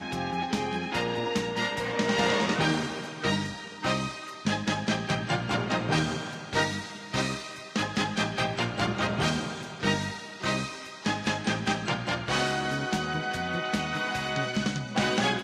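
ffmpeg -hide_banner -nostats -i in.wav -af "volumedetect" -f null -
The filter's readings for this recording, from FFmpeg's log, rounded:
mean_volume: -29.2 dB
max_volume: -11.9 dB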